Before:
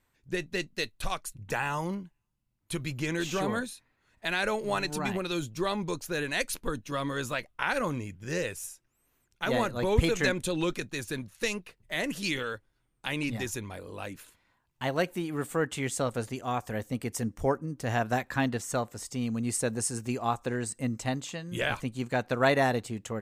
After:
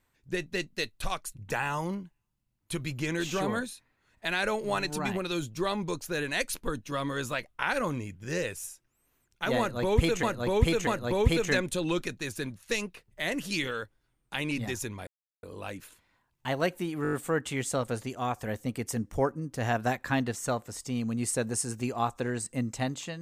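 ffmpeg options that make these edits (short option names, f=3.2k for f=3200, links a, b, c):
-filter_complex "[0:a]asplit=9[a][b][c][d][e][f][g][h][i];[a]atrim=end=10.232[j];[b]atrim=start=9.588:end=10.232[k];[c]atrim=start=9.588:end=13.79,asetpts=PTS-STARTPTS,afade=t=out:st=4.198:d=0.004:c=hsin,apad=pad_dur=0.36[l];[d]atrim=start=13.79:end=15.412,asetpts=PTS-STARTPTS,afade=t=in:d=0.004:c=hsin[m];[e]atrim=start=15.388:end=15.412[n];[f]atrim=start=15.388:end=15.412[o];[g]atrim=start=15.388:end=15.412[p];[h]atrim=start=15.388:end=15.412[q];[i]atrim=start=15.388[r];[j][k]acrossfade=d=0.004:c1=hsin:c2=hsin[s];[l][m]concat=n=2:v=0:a=1[t];[s][t]acrossfade=d=0.004:c1=hsin:c2=hsin[u];[u][n]acrossfade=d=0.004:c1=hsin:c2=hsin[v];[v][o]acrossfade=d=0.004:c1=hsin:c2=hsin[w];[w][p]acrossfade=d=0.004:c1=hsin:c2=hsin[x];[x][q]acrossfade=d=0.004:c1=hsin:c2=hsin[y];[y][r]acrossfade=d=0.004:c1=hsin:c2=hsin"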